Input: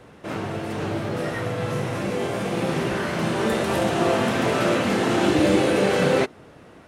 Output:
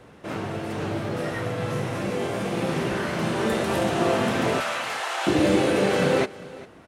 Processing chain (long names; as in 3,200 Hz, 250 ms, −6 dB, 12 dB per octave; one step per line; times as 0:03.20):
0:04.60–0:05.27: high-pass filter 720 Hz 24 dB per octave
on a send: single-tap delay 400 ms −19.5 dB
on the sum: level −1.5 dB